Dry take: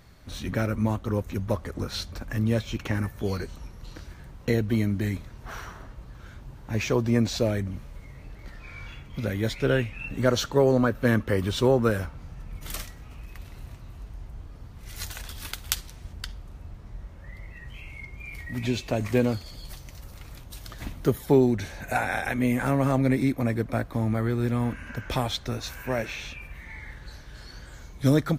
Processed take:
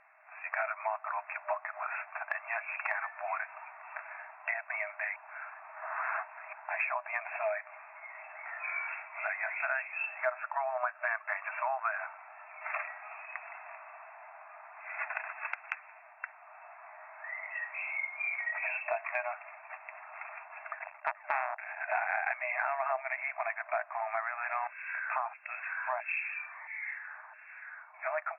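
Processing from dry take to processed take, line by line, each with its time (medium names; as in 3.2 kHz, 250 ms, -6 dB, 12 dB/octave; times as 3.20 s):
5.16–6.53 s: reverse
20.79–22.12 s: transformer saturation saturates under 1.7 kHz
24.67–27.94 s: LFO band-pass saw down 1.5 Hz 870–3900 Hz
whole clip: level rider gain up to 10.5 dB; FFT band-pass 610–2700 Hz; compression 3:1, threshold -32 dBFS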